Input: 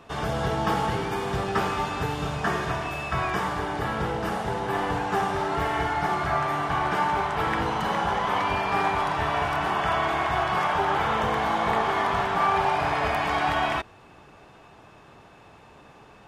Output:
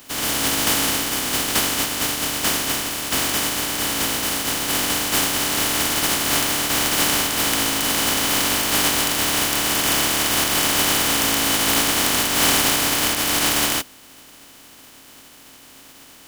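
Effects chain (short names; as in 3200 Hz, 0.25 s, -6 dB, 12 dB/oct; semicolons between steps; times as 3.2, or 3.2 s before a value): spectral contrast lowered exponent 0.13; small resonant body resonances 270/3000 Hz, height 12 dB, ringing for 75 ms; maximiser +5 dB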